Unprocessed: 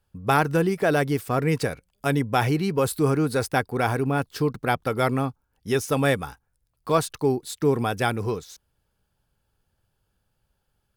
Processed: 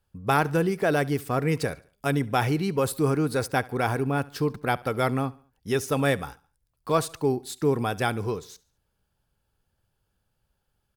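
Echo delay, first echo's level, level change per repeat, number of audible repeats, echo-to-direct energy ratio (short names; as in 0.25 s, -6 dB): 71 ms, -22.0 dB, -7.5 dB, 2, -21.0 dB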